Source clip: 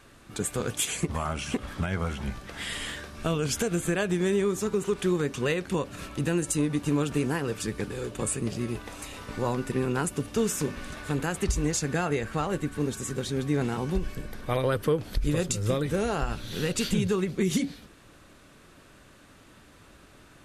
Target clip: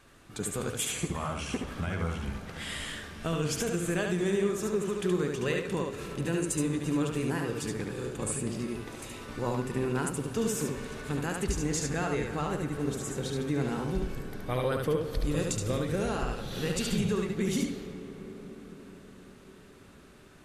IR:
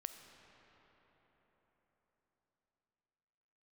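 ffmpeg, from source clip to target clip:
-filter_complex "[0:a]asplit=2[a][b];[1:a]atrim=start_sample=2205,asetrate=30429,aresample=44100,adelay=72[c];[b][c]afir=irnorm=-1:irlink=0,volume=-1.5dB[d];[a][d]amix=inputs=2:normalize=0,volume=-4.5dB"

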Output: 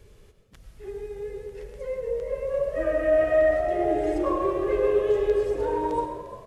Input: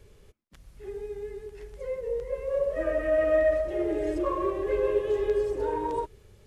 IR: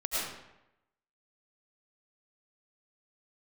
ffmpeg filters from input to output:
-filter_complex "[0:a]asplit=4[a][b][c][d];[b]adelay=350,afreqshift=80,volume=-14.5dB[e];[c]adelay=700,afreqshift=160,volume=-24.1dB[f];[d]adelay=1050,afreqshift=240,volume=-33.8dB[g];[a][e][f][g]amix=inputs=4:normalize=0,asplit=2[h][i];[1:a]atrim=start_sample=2205[j];[i][j]afir=irnorm=-1:irlink=0,volume=-12dB[k];[h][k]amix=inputs=2:normalize=0"

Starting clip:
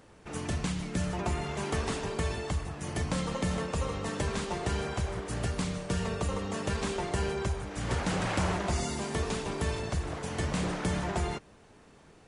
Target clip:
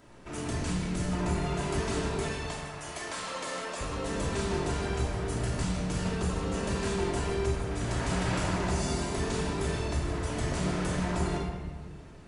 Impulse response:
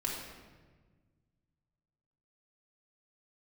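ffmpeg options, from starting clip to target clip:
-filter_complex "[0:a]asettb=1/sr,asplit=3[a][b][c];[a]atrim=end=2.214[d];[b]atrim=start=2.21:end=3.81,asetpts=PTS-STARTPTS,afade=t=in:d=0.004:c=qsin,afade=t=out:st=1.596:d=0.004:c=qsin,highpass=640[e];[c]atrim=start=3.806[f];[d][e]acrossfade=d=0.004:c1=hsin:c2=qsin[g];[g][f]acrossfade=d=0.004:c1=qsin:c2=hsin,acrossover=split=5000[h][i];[h]asoftclip=type=tanh:threshold=-30.5dB[j];[j][i]amix=inputs=2:normalize=0[k];[1:a]atrim=start_sample=2205[l];[k][l]afir=irnorm=-1:irlink=0"

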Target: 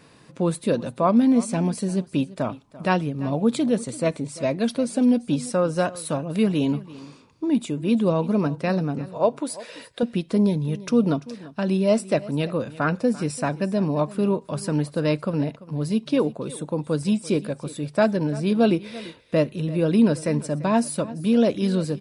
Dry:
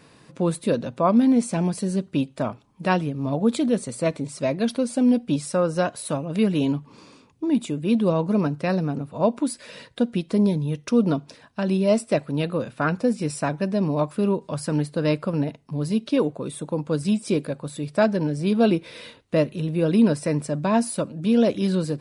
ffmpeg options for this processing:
-filter_complex "[0:a]asettb=1/sr,asplit=3[a][b][c];[a]atrim=end=9.094[d];[b]atrim=start=9.09:end=10.03,asetpts=PTS-STARTPTS,afade=t=in:d=0.004:c=qsin,afade=t=out:st=0.936:d=0.004:c=qsin,lowshelf=f=320:t=q:w=1.5:g=-6.5[e];[c]atrim=start=10.026[f];[d][e]acrossfade=d=0.004:c1=hsin:c2=qsin[g];[g][f]acrossfade=d=0.004:c1=qsin:c2=hsin,aecho=1:1:341:0.119"

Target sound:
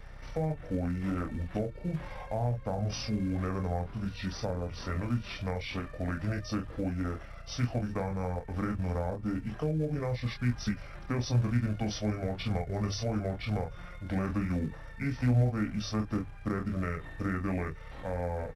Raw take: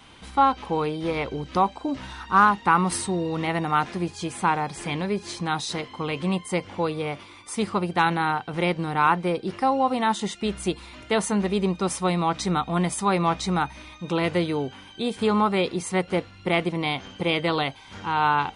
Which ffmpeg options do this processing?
-filter_complex "[0:a]bandreject=f=58.35:t=h:w=4,bandreject=f=116.7:t=h:w=4,bandreject=f=175.05:t=h:w=4,bandreject=f=233.4:t=h:w=4,bandreject=f=291.75:t=h:w=4,asplit=2[a][b];[b]aecho=0:1:19|33:0.473|0.473[c];[a][c]amix=inputs=2:normalize=0,aeval=exprs='val(0)+0.0126*(sin(2*PI*50*n/s)+sin(2*PI*2*50*n/s)/2+sin(2*PI*3*50*n/s)/3+sin(2*PI*4*50*n/s)/4+sin(2*PI*5*50*n/s)/5)':c=same,asplit=2[d][e];[e]acrusher=bits=3:mode=log:mix=0:aa=0.000001,volume=-10.5dB[f];[d][f]amix=inputs=2:normalize=0,asetrate=25476,aresample=44100,atempo=1.73107,acrossover=split=230[g][h];[h]acompressor=threshold=-26dB:ratio=6[i];[g][i]amix=inputs=2:normalize=0,volume=-8dB"

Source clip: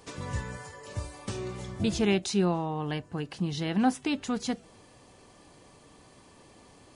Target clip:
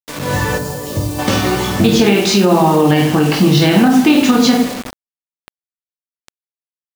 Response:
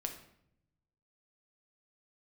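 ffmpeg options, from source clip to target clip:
-filter_complex "[0:a]aeval=exprs='val(0)+0.00126*(sin(2*PI*60*n/s)+sin(2*PI*2*60*n/s)/2+sin(2*PI*3*60*n/s)/3+sin(2*PI*4*60*n/s)/4+sin(2*PI*5*60*n/s)/5)':c=same,aecho=1:1:20|50|95|162.5|263.8:0.631|0.398|0.251|0.158|0.1,acompressor=threshold=-32dB:ratio=3,agate=range=-10dB:threshold=-45dB:ratio=16:detection=peak[a];[1:a]atrim=start_sample=2205,asetrate=83790,aresample=44100[b];[a][b]afir=irnorm=-1:irlink=0,dynaudnorm=f=200:g=3:m=15.5dB,highpass=140,lowpass=5.2k,acrusher=bits=6:mix=0:aa=0.000001,asplit=3[c][d][e];[c]afade=t=out:st=0.57:d=0.02[f];[d]equalizer=f=1.7k:w=0.47:g=-14.5,afade=t=in:st=0.57:d=0.02,afade=t=out:st=1.18:d=0.02[g];[e]afade=t=in:st=1.18:d=0.02[h];[f][g][h]amix=inputs=3:normalize=0,alimiter=level_in=17dB:limit=-1dB:release=50:level=0:latency=1,volume=-1dB"

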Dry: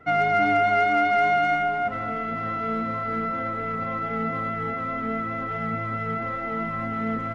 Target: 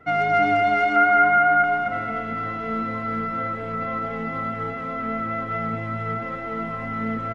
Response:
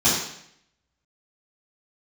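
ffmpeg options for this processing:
-filter_complex "[0:a]asettb=1/sr,asplit=3[a][b][c];[a]atrim=end=0.964[d];[b]atrim=start=0.96:end=1.64,asetpts=PTS-STARTPTS,afade=t=in:d=0.004:c=qsin,afade=t=out:st=0.676:d=0.004:c=qsin,lowpass=f=1.5k:t=q:w=2.8[e];[c]atrim=start=1.636[f];[d][e]acrossfade=d=0.004:c1=hsin:c2=qsin[g];[g][f]acrossfade=d=0.004:c1=qsin:c2=hsin,aecho=1:1:225|450|675|900|1125:0.398|0.175|0.0771|0.0339|0.0149"

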